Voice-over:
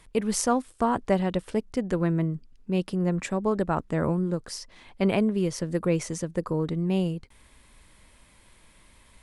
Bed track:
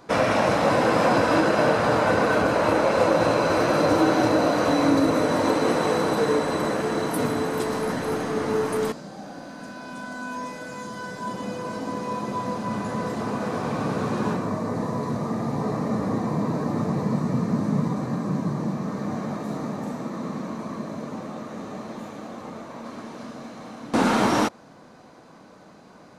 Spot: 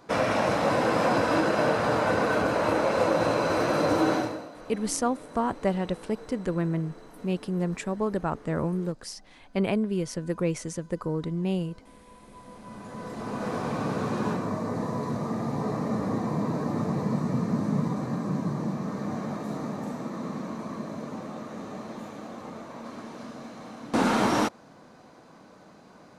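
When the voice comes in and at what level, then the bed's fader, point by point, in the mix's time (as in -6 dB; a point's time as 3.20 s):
4.55 s, -2.5 dB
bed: 4.15 s -4 dB
4.50 s -23.5 dB
12.19 s -23.5 dB
13.48 s -3 dB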